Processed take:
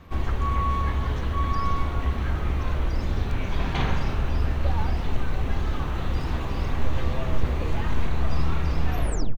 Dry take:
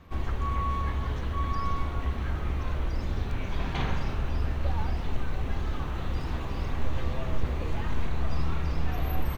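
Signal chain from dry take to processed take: tape stop at the end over 0.38 s; outdoor echo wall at 72 m, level -28 dB; gain +4.5 dB

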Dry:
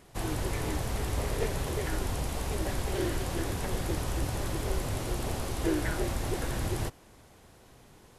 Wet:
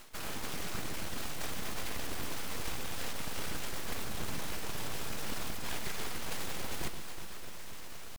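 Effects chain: half-waves squared off; HPF 170 Hz 6 dB/oct; bell 390 Hz -8.5 dB 2.7 oct; reverse; compressor 16:1, threshold -43 dBFS, peak gain reduction 19 dB; reverse; pitch shift +3.5 st; whisperiser; flange 0.25 Hz, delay 2.9 ms, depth 1.4 ms, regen -50%; full-wave rectifier; on a send: echo with dull and thin repeats by turns 0.123 s, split 970 Hz, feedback 84%, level -9 dB; on the sum: gain +15 dB

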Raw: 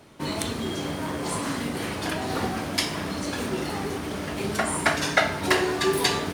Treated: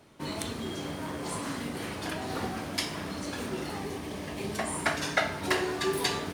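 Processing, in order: 3.79–4.77 notch 1400 Hz, Q 5.2; gain -6 dB

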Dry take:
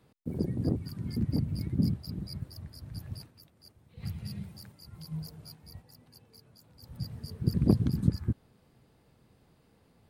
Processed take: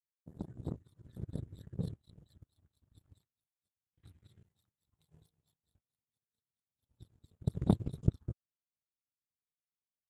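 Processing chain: formant shift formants -4 st; power-law curve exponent 2

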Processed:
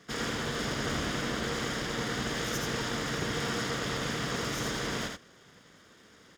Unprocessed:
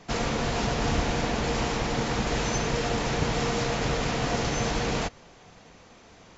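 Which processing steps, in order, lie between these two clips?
minimum comb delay 0.6 ms; HPF 200 Hz 6 dB/oct; echo 82 ms -4 dB; gain -3.5 dB

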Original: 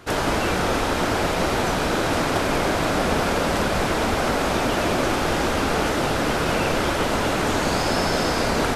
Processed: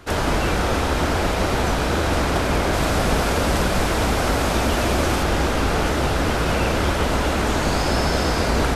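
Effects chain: octaver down 2 oct, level +3 dB; 2.73–5.23 high shelf 5400 Hz +5 dB

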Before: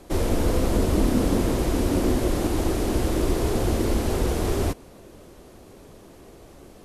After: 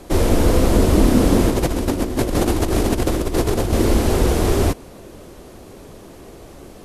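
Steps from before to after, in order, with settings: 1.5–3.73 negative-ratio compressor -25 dBFS, ratio -0.5; gain +7 dB

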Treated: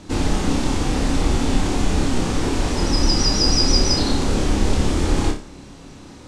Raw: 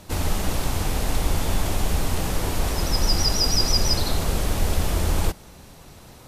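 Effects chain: LPF 8300 Hz 24 dB/oct; bell 280 Hz +10.5 dB 0.69 oct; notch 650 Hz, Q 12; flutter echo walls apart 5 m, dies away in 0.34 s; gain +1.5 dB

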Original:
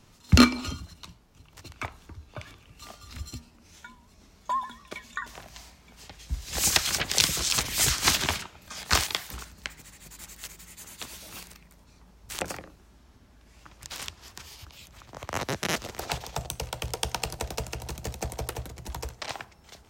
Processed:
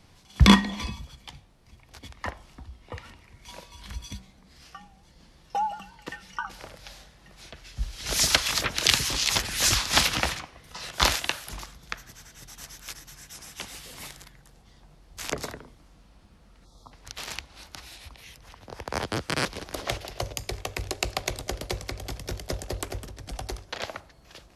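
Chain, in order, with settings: spectral gain 13.49–13.71, 1700–4000 Hz -25 dB; varispeed -19%; gain +1 dB

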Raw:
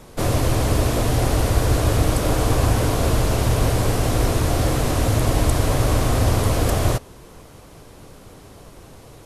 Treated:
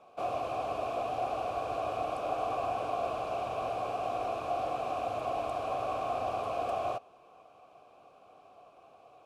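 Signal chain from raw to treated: vowel filter a

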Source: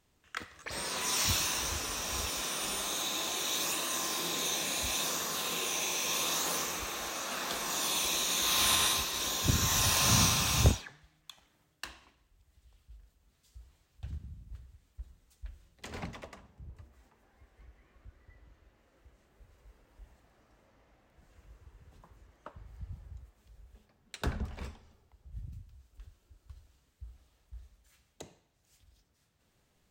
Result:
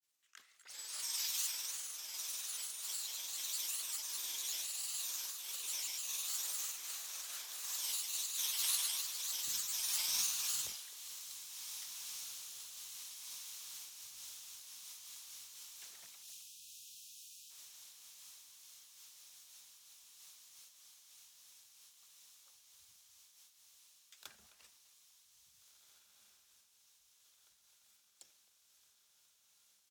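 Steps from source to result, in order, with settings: grains, spray 20 ms, pitch spread up and down by 3 st; on a send: diffused feedback echo 1.849 s, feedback 73%, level -12 dB; on the sum: spectral delete 16.23–17.5, 220–2400 Hz; differentiator; speakerphone echo 0.26 s, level -14 dB; noise-modulated level, depth 60%

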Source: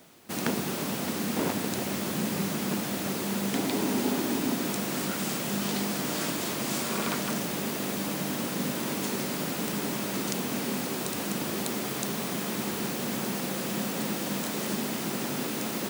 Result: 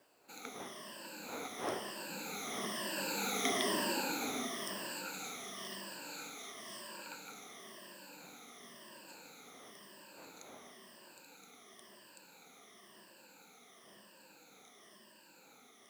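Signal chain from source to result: moving spectral ripple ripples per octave 1.3, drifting -1 Hz, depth 19 dB; wind noise 540 Hz -34 dBFS; Doppler pass-by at 3.49, 10 m/s, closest 6 m; weighting filter A; companded quantiser 6-bit; gain -5 dB

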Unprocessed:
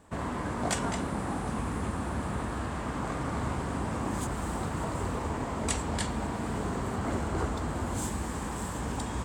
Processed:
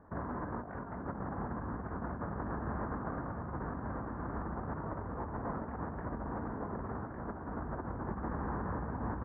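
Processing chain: steep low-pass 1700 Hz 48 dB/oct; negative-ratio compressor -35 dBFS, ratio -0.5; echo 1.155 s -5 dB; gain -4 dB

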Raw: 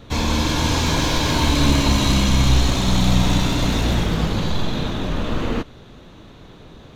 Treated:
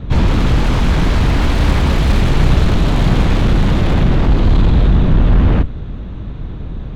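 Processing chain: octaver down 2 oct, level +3 dB; added harmonics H 7 -28 dB, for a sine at -1.5 dBFS; in parallel at -3 dB: sine folder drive 18 dB, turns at -2.5 dBFS; on the sum: tone controls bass +11 dB, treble -15 dB; gain -11.5 dB

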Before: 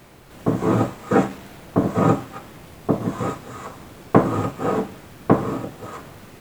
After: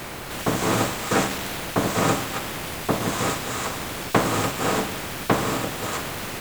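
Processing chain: spectral compressor 2:1; gain -4 dB

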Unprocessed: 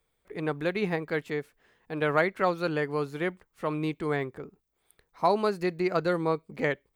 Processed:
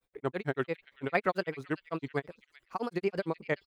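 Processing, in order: grains 0.171 s, grains 4.7/s, spray 18 ms, pitch spread up and down by 3 st; delay with a stepping band-pass 0.731 s, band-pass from 3000 Hz, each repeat 0.7 oct, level -11 dB; tempo 1.9×

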